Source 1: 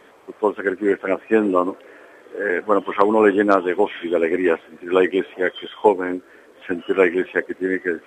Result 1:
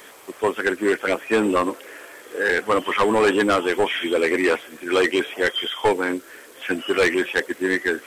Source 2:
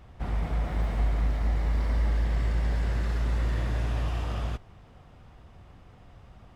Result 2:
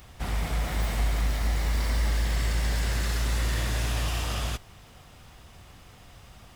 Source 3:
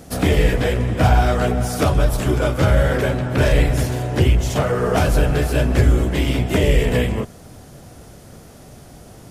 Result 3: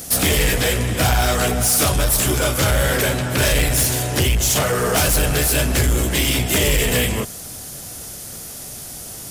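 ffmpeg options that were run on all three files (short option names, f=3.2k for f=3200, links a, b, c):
-af "crystalizer=i=7:c=0,asoftclip=type=tanh:threshold=-12dB"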